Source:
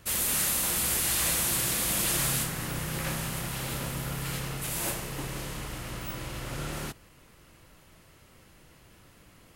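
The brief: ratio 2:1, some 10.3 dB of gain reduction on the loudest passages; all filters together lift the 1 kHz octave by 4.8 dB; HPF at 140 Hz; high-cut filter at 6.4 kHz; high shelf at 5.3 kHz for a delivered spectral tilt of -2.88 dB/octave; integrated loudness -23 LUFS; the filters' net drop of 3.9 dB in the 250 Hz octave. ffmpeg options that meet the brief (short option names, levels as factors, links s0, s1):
-af "highpass=140,lowpass=6400,equalizer=f=250:t=o:g=-5,equalizer=f=1000:t=o:g=6.5,highshelf=f=5300:g=-5,acompressor=threshold=0.00398:ratio=2,volume=10"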